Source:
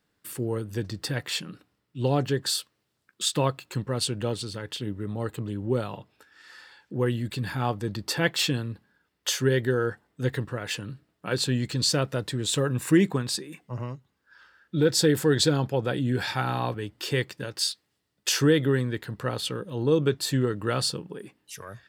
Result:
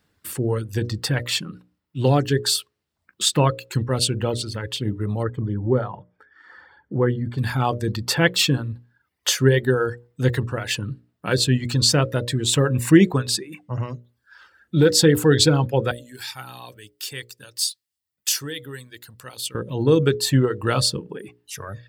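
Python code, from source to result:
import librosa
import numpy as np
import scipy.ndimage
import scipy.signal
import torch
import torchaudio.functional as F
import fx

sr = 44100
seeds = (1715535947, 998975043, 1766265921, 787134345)

y = fx.savgol(x, sr, points=41, at=(5.22, 7.37), fade=0.02)
y = fx.pre_emphasis(y, sr, coefficient=0.9, at=(15.91, 19.55))
y = fx.dereverb_blind(y, sr, rt60_s=0.72)
y = fx.peak_eq(y, sr, hz=71.0, db=9.5, octaves=1.2)
y = fx.hum_notches(y, sr, base_hz=60, count=10)
y = y * librosa.db_to_amplitude(6.5)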